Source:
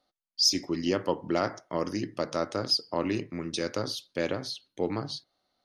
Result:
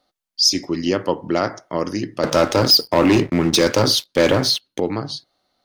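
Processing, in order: 2.23–4.80 s: waveshaping leveller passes 3; trim +7.5 dB

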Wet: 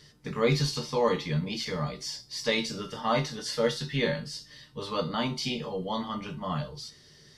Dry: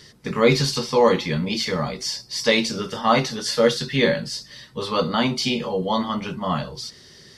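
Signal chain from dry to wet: bass shelf 87 Hz +7 dB; feedback comb 150 Hz, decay 0.27 s, harmonics all, mix 70%; trim -1.5 dB

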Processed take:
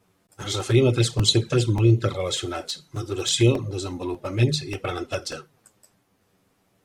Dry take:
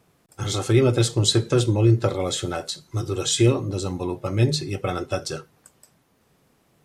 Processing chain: dynamic bell 2.8 kHz, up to +5 dB, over -42 dBFS, Q 0.74; touch-sensitive flanger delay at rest 10.6 ms, full sweep at -13 dBFS; crackling interface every 0.59 s, samples 128, repeat, from 0.60 s

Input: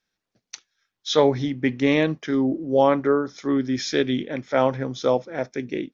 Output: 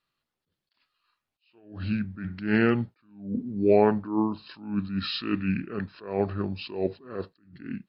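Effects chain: wide varispeed 0.753×; attacks held to a fixed rise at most 120 dB/s; trim -2 dB

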